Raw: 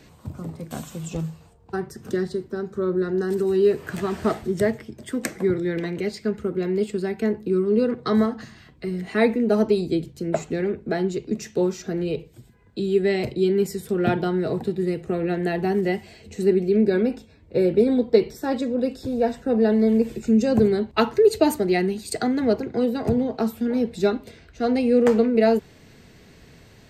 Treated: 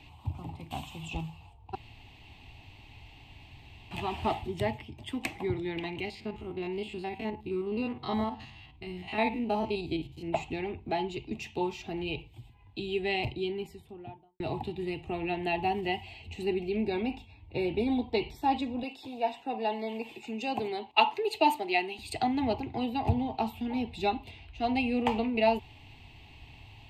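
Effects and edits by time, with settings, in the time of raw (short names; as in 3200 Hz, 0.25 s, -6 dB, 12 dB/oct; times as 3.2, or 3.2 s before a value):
1.75–3.91 room tone
6.05–10.28 stepped spectrum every 50 ms
13.08–14.4 studio fade out
18.83–21.99 HPF 360 Hz
whole clip: EQ curve 110 Hz 0 dB, 190 Hz -17 dB, 290 Hz -7 dB, 520 Hz -20 dB, 840 Hz +5 dB, 1500 Hz -20 dB, 2700 Hz +6 dB, 5800 Hz -16 dB, 11000 Hz -14 dB; gain +2 dB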